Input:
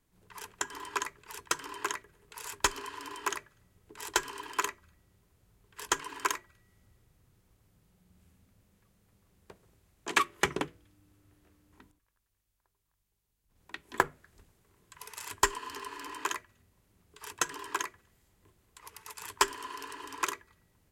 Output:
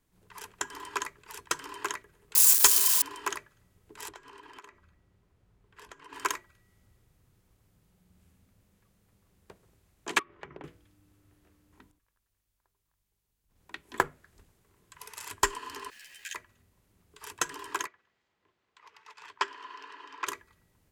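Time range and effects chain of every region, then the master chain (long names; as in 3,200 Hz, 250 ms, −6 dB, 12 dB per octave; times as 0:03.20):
0:02.35–0:03.02: spike at every zero crossing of −22 dBFS + bass and treble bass −8 dB, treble +10 dB
0:04.09–0:06.13: low-pass filter 2,400 Hz 6 dB per octave + downward compressor 8 to 1, threshold −46 dBFS
0:10.19–0:10.64: low-pass filter 2,000 Hz + downward compressor 8 to 1, threshold −41 dBFS
0:15.90–0:16.35: Butterworth high-pass 1,600 Hz 96 dB per octave + centre clipping without the shift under −51 dBFS + string-ensemble chorus
0:17.87–0:20.27: high-pass filter 850 Hz 6 dB per octave + high-frequency loss of the air 190 metres
whole clip: no processing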